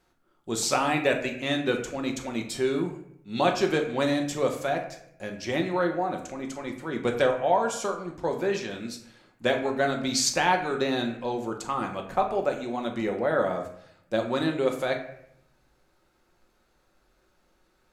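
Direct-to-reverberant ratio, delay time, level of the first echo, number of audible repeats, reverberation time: 3.0 dB, none, none, none, 0.70 s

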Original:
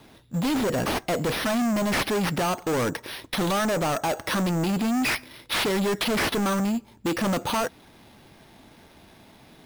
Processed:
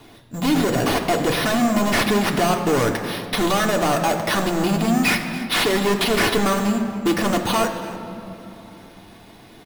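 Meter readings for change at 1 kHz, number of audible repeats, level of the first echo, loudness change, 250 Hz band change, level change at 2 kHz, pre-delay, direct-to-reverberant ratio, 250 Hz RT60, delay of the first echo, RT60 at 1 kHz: +6.0 dB, 1, -17.0 dB, +5.5 dB, +5.0 dB, +6.0 dB, 3 ms, 1.5 dB, 4.0 s, 0.283 s, 2.9 s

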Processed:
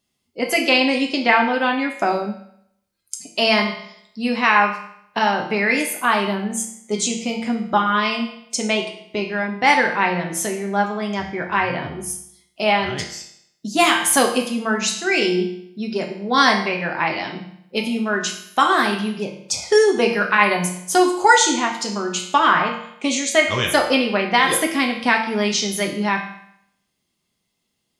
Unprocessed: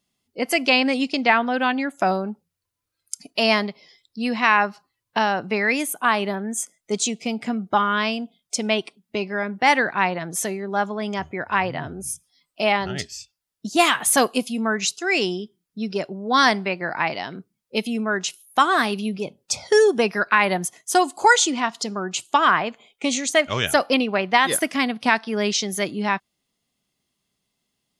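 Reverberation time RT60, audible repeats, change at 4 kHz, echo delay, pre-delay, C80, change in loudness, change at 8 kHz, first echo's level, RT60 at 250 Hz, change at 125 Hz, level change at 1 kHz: 0.70 s, none, +2.5 dB, none, 6 ms, 10.0 dB, +2.5 dB, +2.0 dB, none, 0.70 s, +3.0 dB, +2.0 dB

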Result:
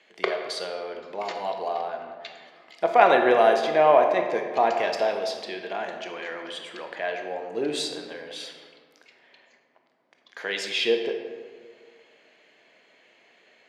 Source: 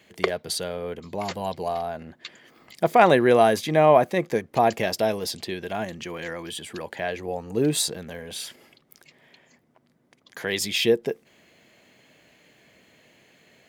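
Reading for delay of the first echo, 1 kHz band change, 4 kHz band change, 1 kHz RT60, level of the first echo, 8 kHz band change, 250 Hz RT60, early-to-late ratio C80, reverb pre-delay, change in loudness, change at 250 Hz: none, +0.5 dB, -1.5 dB, 1.6 s, none, -10.5 dB, 2.0 s, 7.0 dB, 18 ms, -0.5 dB, -6.5 dB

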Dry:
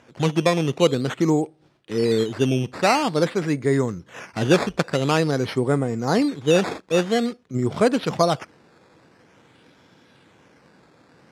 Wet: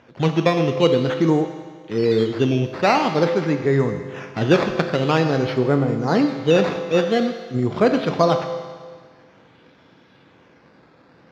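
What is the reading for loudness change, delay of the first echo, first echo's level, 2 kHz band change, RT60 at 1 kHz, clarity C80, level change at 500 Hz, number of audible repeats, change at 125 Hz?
+2.0 dB, none, none, +1.5 dB, 1.7 s, 9.0 dB, +2.5 dB, none, +2.5 dB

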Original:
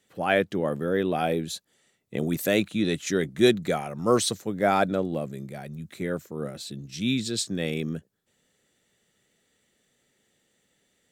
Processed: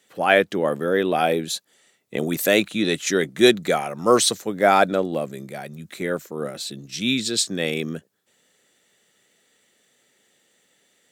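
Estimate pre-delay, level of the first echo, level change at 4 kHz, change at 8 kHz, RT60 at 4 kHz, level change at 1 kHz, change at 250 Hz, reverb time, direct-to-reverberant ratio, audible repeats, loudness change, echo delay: none, none, +7.5 dB, +7.5 dB, none, +6.5 dB, +2.5 dB, none, none, none, +5.0 dB, none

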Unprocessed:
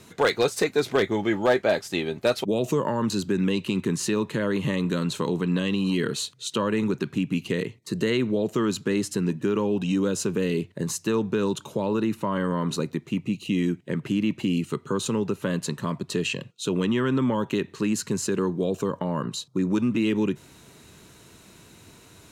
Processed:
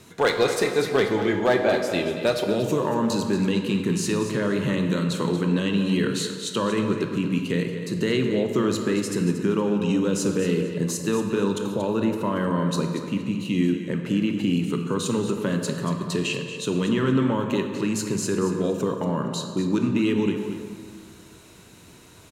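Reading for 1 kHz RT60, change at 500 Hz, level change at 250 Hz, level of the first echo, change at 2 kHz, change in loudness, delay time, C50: 2.0 s, +1.5 dB, +2.0 dB, -10.5 dB, +1.5 dB, +2.0 dB, 0.232 s, 5.0 dB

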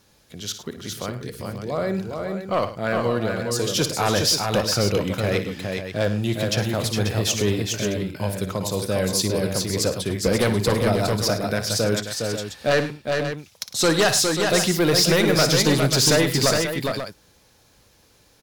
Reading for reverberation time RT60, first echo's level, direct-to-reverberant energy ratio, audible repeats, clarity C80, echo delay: none, -11.5 dB, none, 4, none, 58 ms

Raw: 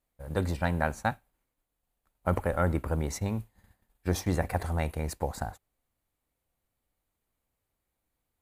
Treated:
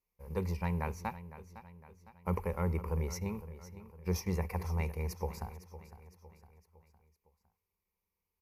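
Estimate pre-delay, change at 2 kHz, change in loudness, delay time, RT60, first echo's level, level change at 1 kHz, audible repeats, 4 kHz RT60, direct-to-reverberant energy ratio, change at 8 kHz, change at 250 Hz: none, -10.5 dB, -5.5 dB, 0.508 s, none, -14.5 dB, -8.0 dB, 4, none, none, -6.0 dB, -5.5 dB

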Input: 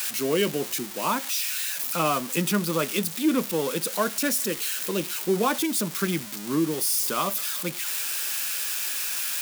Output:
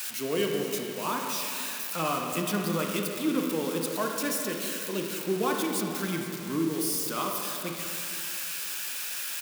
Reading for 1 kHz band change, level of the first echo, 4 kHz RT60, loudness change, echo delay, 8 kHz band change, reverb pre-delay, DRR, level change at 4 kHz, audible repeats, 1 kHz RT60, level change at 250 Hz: -3.5 dB, -14.5 dB, 2.1 s, -4.5 dB, 0.468 s, -6.0 dB, 27 ms, 1.0 dB, -4.5 dB, 1, 2.4 s, -3.0 dB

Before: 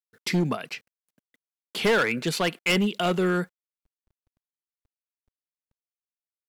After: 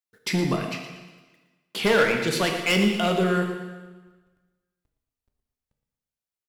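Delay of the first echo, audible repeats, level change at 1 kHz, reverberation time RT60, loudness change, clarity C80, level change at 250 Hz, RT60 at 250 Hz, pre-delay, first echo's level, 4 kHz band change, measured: 0.116 s, 1, +2.0 dB, 1.3 s, +2.0 dB, 5.5 dB, +2.0 dB, 1.3 s, 5 ms, -11.0 dB, +2.0 dB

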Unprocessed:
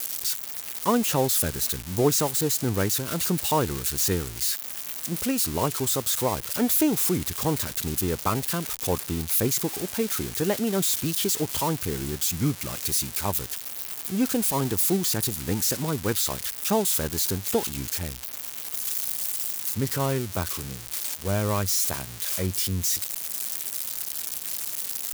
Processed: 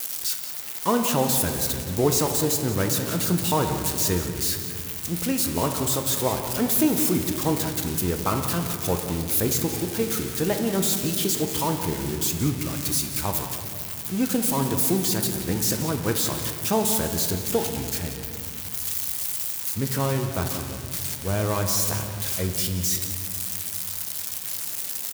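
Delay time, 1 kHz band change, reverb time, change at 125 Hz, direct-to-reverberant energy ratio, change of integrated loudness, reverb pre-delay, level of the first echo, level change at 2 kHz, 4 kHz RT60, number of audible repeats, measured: 0.178 s, +1.5 dB, 2.3 s, +2.5 dB, 4.0 dB, +1.0 dB, 6 ms, -12.5 dB, +1.5 dB, 1.3 s, 1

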